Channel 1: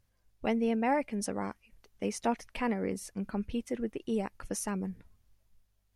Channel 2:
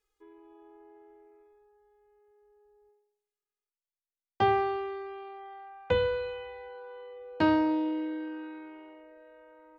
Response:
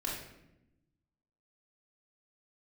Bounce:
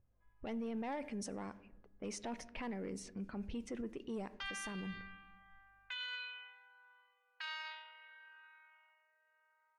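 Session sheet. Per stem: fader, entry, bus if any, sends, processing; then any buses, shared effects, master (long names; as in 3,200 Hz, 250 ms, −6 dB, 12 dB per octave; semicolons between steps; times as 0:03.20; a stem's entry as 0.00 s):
−2.5 dB, 0.00 s, send −20.5 dB, low-pass filter 9,500 Hz 24 dB per octave; soft clipping −24.5 dBFS, distortion −15 dB
−1.0 dB, 0.00 s, send −12 dB, inverse Chebyshev high-pass filter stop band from 330 Hz, stop band 70 dB; high-shelf EQ 3,600 Hz +8.5 dB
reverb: on, RT60 0.90 s, pre-delay 3 ms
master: low-pass that shuts in the quiet parts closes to 810 Hz, open at −33 dBFS; brickwall limiter −35.5 dBFS, peak gain reduction 13.5 dB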